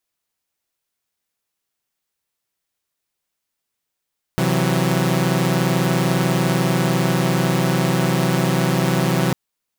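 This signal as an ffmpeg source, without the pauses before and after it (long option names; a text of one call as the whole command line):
ffmpeg -f lavfi -i "aevalsrc='0.126*((2*mod(130.81*t,1)-1)+(2*mod(164.81*t,1)-1)+(2*mod(185*t,1)-1))':duration=4.95:sample_rate=44100" out.wav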